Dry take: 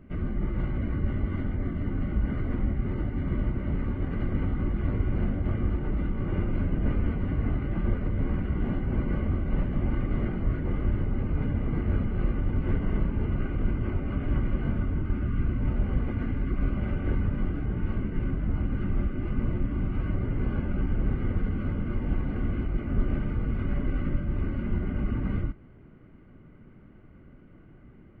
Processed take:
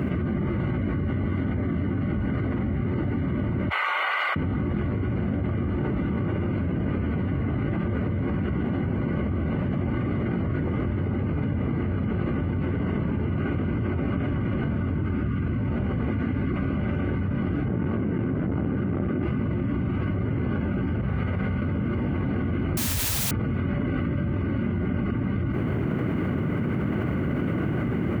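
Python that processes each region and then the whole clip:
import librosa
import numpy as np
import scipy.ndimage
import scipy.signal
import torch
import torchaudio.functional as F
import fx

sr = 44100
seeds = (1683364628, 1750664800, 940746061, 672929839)

y = fx.chain(x, sr, fx.bessel_highpass(hz=1300.0, order=6),
    fx.notch(hz=1700.0, q=7.4), at=(3.69, 4.36))
y = fx.chain(y, sr, fx.highpass(hz=120.0, slope=6),
    fx.high_shelf(hz=2100.0, db=-10.0),
    fx.transformer_sat(knee_hz=200.0), at=(17.68, 19.23))
y = fx.chain(y, sr, fx.peak_eq(hz=300.0, db=-14.0, octaves=0.53),
    fx.comb_fb(f0_hz=64.0, decay_s=1.7, harmonics='all', damping=0.0, mix_pct=80), at=(21.01, 21.62))
y = fx.chain(y, sr, fx.spec_expand(power=3.2),
    fx.quant_dither(seeds[0], bits=6, dither='triangular'), at=(22.77, 23.31))
y = scipy.signal.sosfilt(scipy.signal.butter(4, 80.0, 'highpass', fs=sr, output='sos'), y)
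y = fx.env_flatten(y, sr, amount_pct=100)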